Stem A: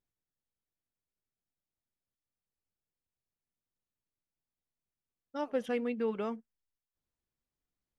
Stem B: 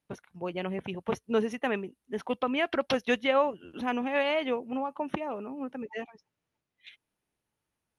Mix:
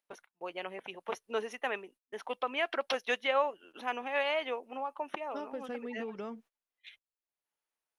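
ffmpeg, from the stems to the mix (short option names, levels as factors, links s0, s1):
-filter_complex "[0:a]acompressor=threshold=0.0126:ratio=5,volume=1.06[s0];[1:a]highpass=550,acompressor=mode=upward:threshold=0.00316:ratio=2.5,volume=0.794[s1];[s0][s1]amix=inputs=2:normalize=0,agate=range=0.0631:threshold=0.00141:ratio=16:detection=peak"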